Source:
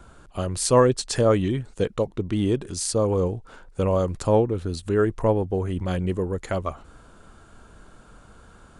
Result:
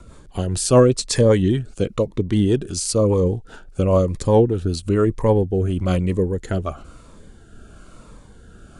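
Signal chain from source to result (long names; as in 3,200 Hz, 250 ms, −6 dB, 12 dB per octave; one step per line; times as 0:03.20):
rotating-speaker cabinet horn 5 Hz, later 1 Hz, at 0:04.70
phaser whose notches keep moving one way falling 1 Hz
level +7.5 dB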